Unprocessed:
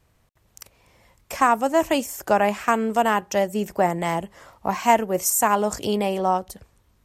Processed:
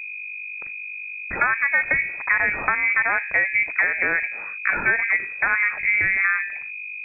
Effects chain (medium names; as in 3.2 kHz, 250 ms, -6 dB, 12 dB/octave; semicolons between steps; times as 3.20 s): de-hum 56.39 Hz, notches 16; gate -49 dBFS, range -21 dB; in parallel at 0 dB: peak limiter -15 dBFS, peak gain reduction 11 dB; on the sum: compression, threshold -16 dBFS, peak gain reduction 7.5 dB; mains buzz 50 Hz, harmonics 7, -35 dBFS -9 dB/octave; frequency inversion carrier 2.5 kHz